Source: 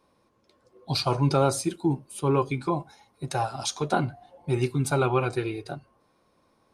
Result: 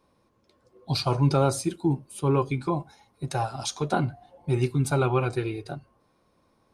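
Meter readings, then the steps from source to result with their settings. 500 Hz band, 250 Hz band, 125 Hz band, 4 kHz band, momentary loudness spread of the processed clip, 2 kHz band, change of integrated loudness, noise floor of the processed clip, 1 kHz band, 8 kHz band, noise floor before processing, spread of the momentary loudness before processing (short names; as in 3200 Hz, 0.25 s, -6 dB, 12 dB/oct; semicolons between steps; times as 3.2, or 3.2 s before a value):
-0.5 dB, +0.5 dB, +2.0 dB, -1.5 dB, 10 LU, -1.5 dB, 0.0 dB, -68 dBFS, -1.5 dB, -1.5 dB, -67 dBFS, 10 LU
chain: low shelf 190 Hz +5.5 dB; gain -1.5 dB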